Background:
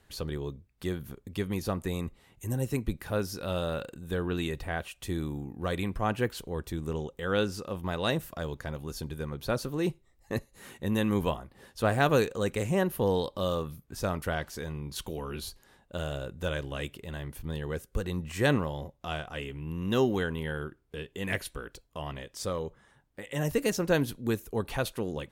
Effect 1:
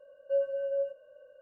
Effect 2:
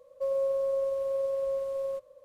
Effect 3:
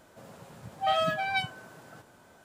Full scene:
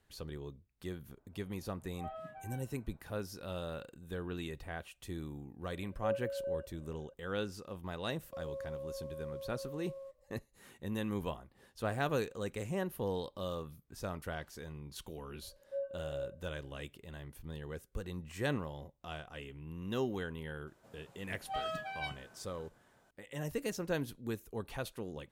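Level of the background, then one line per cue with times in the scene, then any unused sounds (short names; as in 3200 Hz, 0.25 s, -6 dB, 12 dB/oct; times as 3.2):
background -9.5 dB
1.17 add 3 -17.5 dB + LPF 1200 Hz
5.73 add 1 -7 dB
8.12 add 2 -15 dB
15.42 add 1 -10.5 dB + LPF 1800 Hz
20.67 add 3 -11.5 dB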